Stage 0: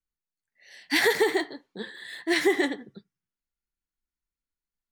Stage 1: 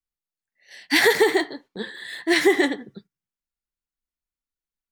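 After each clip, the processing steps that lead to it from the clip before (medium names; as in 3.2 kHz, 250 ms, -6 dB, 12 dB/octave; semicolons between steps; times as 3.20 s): gate -52 dBFS, range -8 dB; trim +5 dB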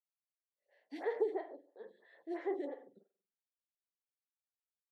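band-pass filter 550 Hz, Q 3.3; reverberation, pre-delay 46 ms, DRR 8.5 dB; lamp-driven phase shifter 3 Hz; trim -8 dB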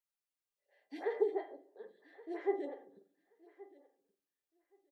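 feedback comb 400 Hz, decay 0.17 s, harmonics all, mix 70%; feedback delay 1124 ms, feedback 16%, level -21 dB; simulated room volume 2400 m³, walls furnished, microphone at 0.39 m; trim +8 dB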